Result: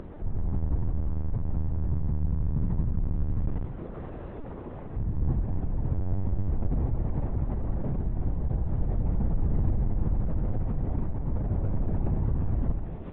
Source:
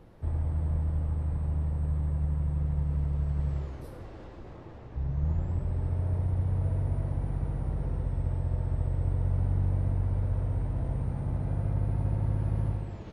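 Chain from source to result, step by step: LPC vocoder at 8 kHz pitch kept; upward compressor, threshold -33 dBFS; low-pass 1.2 kHz 6 dB/octave; trim +2.5 dB

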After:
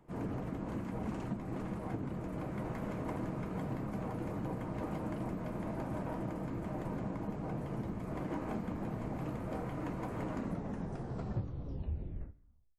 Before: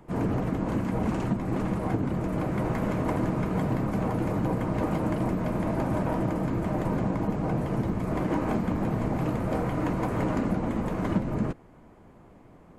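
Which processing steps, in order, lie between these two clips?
tape stop on the ending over 2.43 s; feedback comb 70 Hz, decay 0.45 s, harmonics all, mix 40%; trim -8 dB

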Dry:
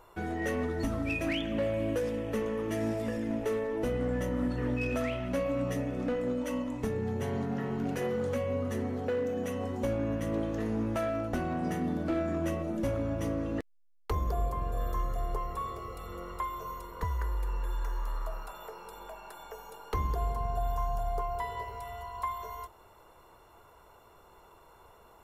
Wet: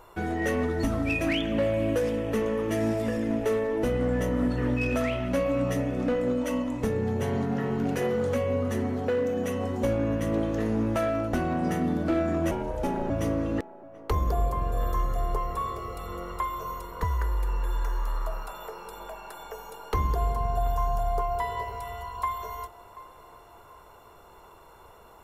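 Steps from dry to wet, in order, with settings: 12.51–13.10 s: ring modulator 290 Hz; band-passed feedback delay 734 ms, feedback 44%, band-pass 750 Hz, level -16 dB; trim +5 dB

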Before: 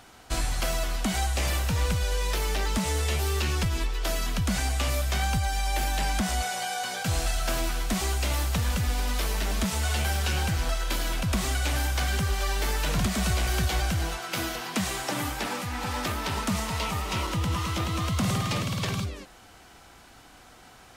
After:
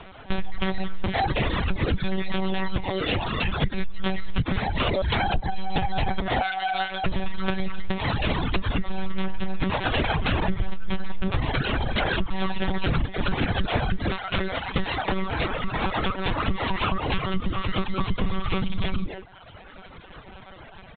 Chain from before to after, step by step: 9.05–11.61 s: square wave that keeps the level; bass shelf 160 Hz +8.5 dB; comb 6.6 ms, depth 79%; monotone LPC vocoder at 8 kHz 190 Hz; reverb removal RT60 0.85 s; compression 6:1, threshold -25 dBFS, peak gain reduction 12.5 dB; trim +5.5 dB

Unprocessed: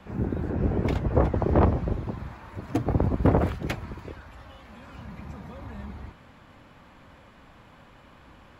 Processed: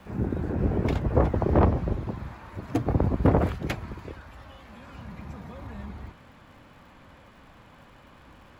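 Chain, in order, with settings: crackle 440 per s -54 dBFS, from 1.59 s 130 per s

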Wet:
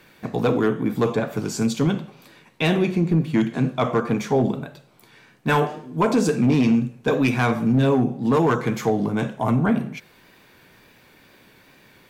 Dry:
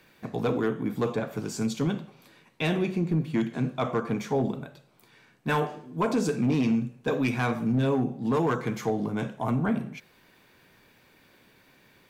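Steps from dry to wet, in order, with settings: wow and flutter 34 cents; trim +6.5 dB

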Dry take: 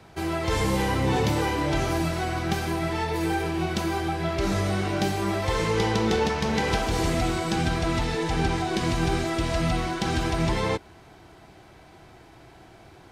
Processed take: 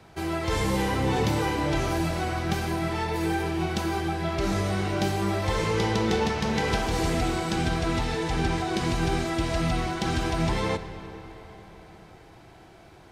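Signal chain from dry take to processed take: algorithmic reverb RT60 4.5 s, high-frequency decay 0.7×, pre-delay 0 ms, DRR 10.5 dB; trim -1.5 dB

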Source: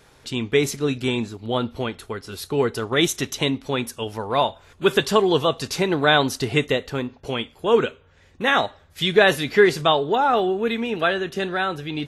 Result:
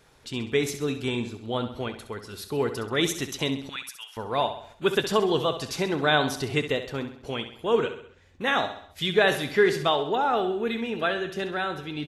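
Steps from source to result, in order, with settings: 3.69–4.17 s: high-pass 1.3 kHz 24 dB/octave; feedback delay 66 ms, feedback 49%, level -10.5 dB; trim -5.5 dB

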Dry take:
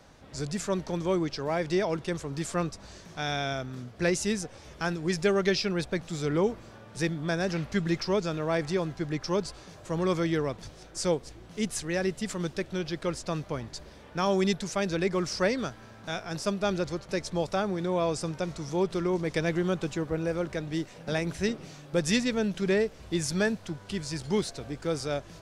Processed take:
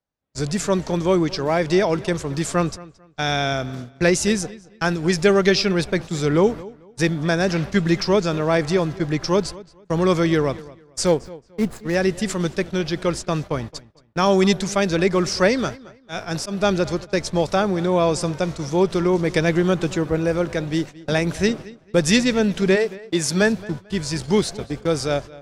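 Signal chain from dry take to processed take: 11.06–11.95 s: median filter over 15 samples; 22.75–23.40 s: high-pass 520 Hz -> 120 Hz 12 dB/octave; gate -38 dBFS, range -42 dB; 15.87–16.58 s: slow attack 115 ms; filtered feedback delay 222 ms, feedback 25%, low-pass 4.7 kHz, level -19.5 dB; trim +9 dB

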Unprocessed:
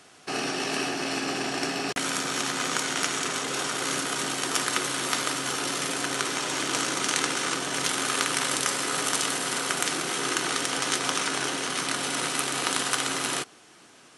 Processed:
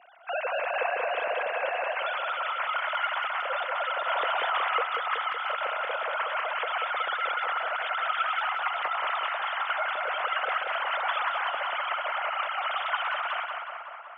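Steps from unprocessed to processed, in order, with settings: formants replaced by sine waves; high-pass 220 Hz 12 dB/octave; treble shelf 2 kHz -10 dB; tape echo 185 ms, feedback 75%, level -3 dB, low-pass 3 kHz; on a send at -23 dB: reverberation RT60 0.55 s, pre-delay 5 ms; 4.08–4.84 s: on the sum: level flattener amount 50%

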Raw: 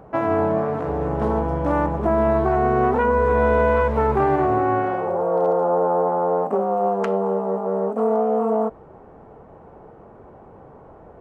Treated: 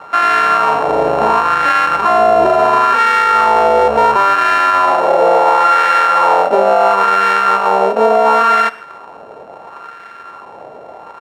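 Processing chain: sorted samples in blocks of 32 samples; gate with hold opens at -42 dBFS; LFO band-pass sine 0.72 Hz 620–1600 Hz; on a send: delay 123 ms -21.5 dB; on the sum: loudness maximiser +19.5 dB; trim -1 dB

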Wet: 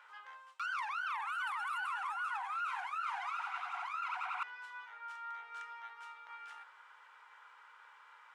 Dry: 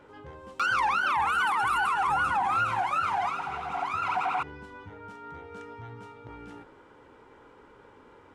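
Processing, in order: high-pass 1.1 kHz 24 dB/octave; treble shelf 3.3 kHz -6 dB; reverse; compression 6:1, threshold -40 dBFS, peak gain reduction 14 dB; reverse; trim +3 dB

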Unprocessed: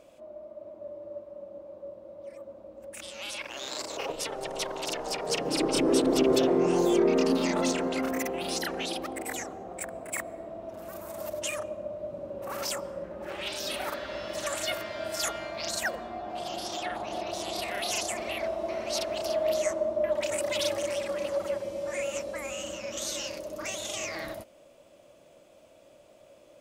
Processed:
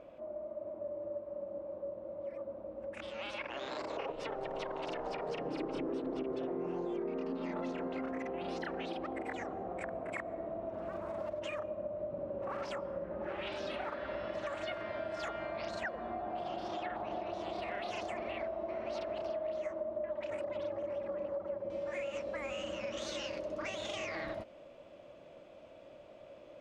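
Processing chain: low-pass 2 kHz 12 dB/octave, from 20.44 s 1.1 kHz, from 21.70 s 3.1 kHz; compression 6:1, threshold -38 dBFS, peak gain reduction 18 dB; trim +2 dB

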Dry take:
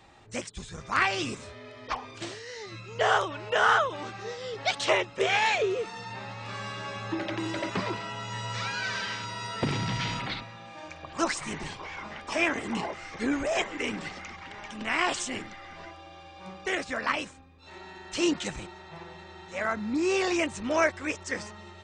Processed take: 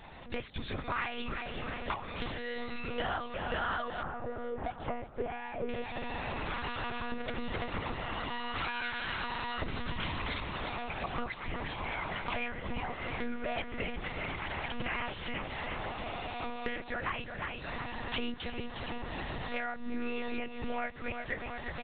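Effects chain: recorder AGC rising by 5.4 dB/s; feedback delay 356 ms, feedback 47%, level -12 dB; monotone LPC vocoder at 8 kHz 240 Hz; compression 4:1, threshold -40 dBFS, peak gain reduction 18.5 dB; 4.03–5.69 s: low-pass 1.2 kHz 12 dB/octave; trim +5.5 dB

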